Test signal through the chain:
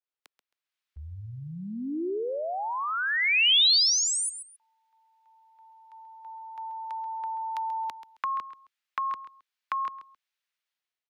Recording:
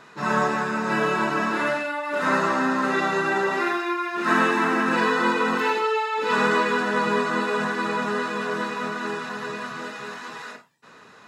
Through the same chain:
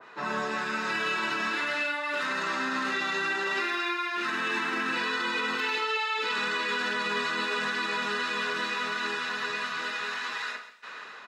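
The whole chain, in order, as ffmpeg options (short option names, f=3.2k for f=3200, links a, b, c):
-filter_complex "[0:a]acrossover=split=320 4500:gain=0.2 1 0.2[a][b][c];[a][b][c]amix=inputs=3:normalize=0,acrossover=split=1300[d][e];[e]dynaudnorm=f=250:g=5:m=13dB[f];[d][f]amix=inputs=2:normalize=0,alimiter=limit=-11dB:level=0:latency=1:release=35,acrossover=split=320|3000[g][h][i];[h]acompressor=threshold=-33dB:ratio=4[j];[g][j][i]amix=inputs=3:normalize=0,asplit=2[k][l];[l]aecho=0:1:134|268:0.211|0.0444[m];[k][m]amix=inputs=2:normalize=0,adynamicequalizer=threshold=0.0141:dfrequency=2100:dqfactor=0.7:tfrequency=2100:tqfactor=0.7:attack=5:release=100:ratio=0.375:range=1.5:mode=cutabove:tftype=highshelf"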